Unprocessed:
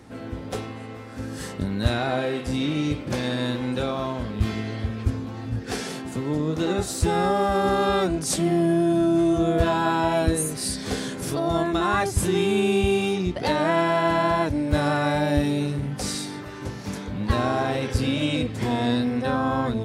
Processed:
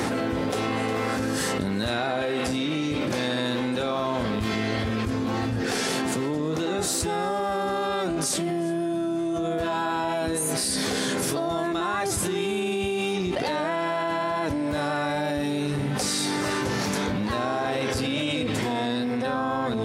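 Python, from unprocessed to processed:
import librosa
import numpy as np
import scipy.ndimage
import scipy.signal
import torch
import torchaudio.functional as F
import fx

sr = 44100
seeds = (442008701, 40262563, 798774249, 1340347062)

y = fx.highpass(x, sr, hz=280.0, slope=6)
y = y + 10.0 ** (-19.5 / 20.0) * np.pad(y, (int(358 * sr / 1000.0), 0))[:len(y)]
y = fx.env_flatten(y, sr, amount_pct=100)
y = F.gain(torch.from_numpy(y), -6.5).numpy()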